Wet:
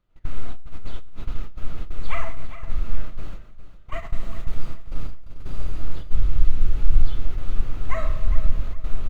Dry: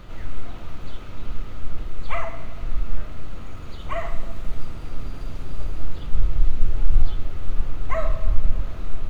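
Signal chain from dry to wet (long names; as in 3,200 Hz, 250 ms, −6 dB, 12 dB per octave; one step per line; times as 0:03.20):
noise gate −21 dBFS, range −32 dB
dynamic equaliser 670 Hz, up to −5 dB, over −44 dBFS, Q 0.89
on a send: repeating echo 407 ms, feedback 28%, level −13 dB
on the sum: four-comb reverb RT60 0.64 s, combs from 27 ms, DRR 17.5 dB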